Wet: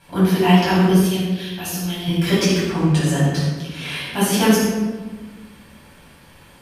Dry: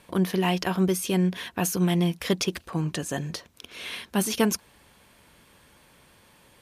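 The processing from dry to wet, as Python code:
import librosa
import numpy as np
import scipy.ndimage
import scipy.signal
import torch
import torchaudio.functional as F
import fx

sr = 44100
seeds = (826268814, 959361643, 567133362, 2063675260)

y = fx.graphic_eq(x, sr, hz=(125, 250, 500, 1000, 2000, 4000, 8000), db=(-11, -12, -9, -10, -7, 4, -7), at=(0.9, 2.08))
y = fx.room_shoebox(y, sr, seeds[0], volume_m3=950.0, walls='mixed', distance_m=8.1)
y = F.gain(torch.from_numpy(y), -4.5).numpy()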